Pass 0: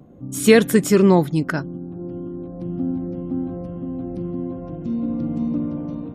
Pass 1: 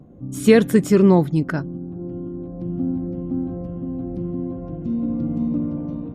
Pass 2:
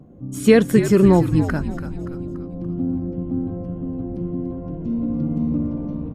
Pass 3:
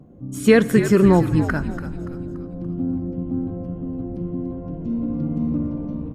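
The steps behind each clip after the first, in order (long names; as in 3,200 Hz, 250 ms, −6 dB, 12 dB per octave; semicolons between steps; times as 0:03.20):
spectral tilt −1.5 dB per octave; level −2.5 dB
notch filter 3,700 Hz, Q 23; on a send: echo with shifted repeats 287 ms, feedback 48%, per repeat −79 Hz, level −10 dB
dynamic equaliser 1,500 Hz, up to +5 dB, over −39 dBFS, Q 1.3; on a send at −18 dB: convolution reverb RT60 2.2 s, pre-delay 18 ms; on the sum: level −1 dB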